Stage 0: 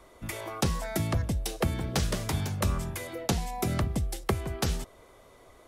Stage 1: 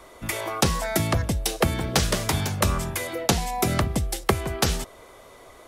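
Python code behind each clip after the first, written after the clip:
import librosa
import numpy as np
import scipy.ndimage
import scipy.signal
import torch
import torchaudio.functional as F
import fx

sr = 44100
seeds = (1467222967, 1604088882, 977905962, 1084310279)

y = fx.low_shelf(x, sr, hz=330.0, db=-6.0)
y = F.gain(torch.from_numpy(y), 9.0).numpy()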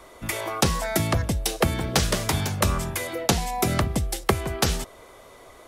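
y = x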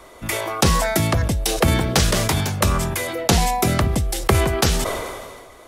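y = fx.sustainer(x, sr, db_per_s=34.0)
y = F.gain(torch.from_numpy(y), 3.0).numpy()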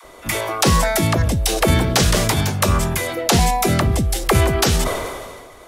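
y = fx.dispersion(x, sr, late='lows', ms=42.0, hz=410.0)
y = F.gain(torch.from_numpy(y), 2.0).numpy()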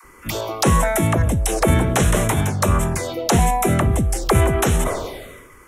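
y = fx.env_phaser(x, sr, low_hz=580.0, high_hz=4700.0, full_db=-14.5)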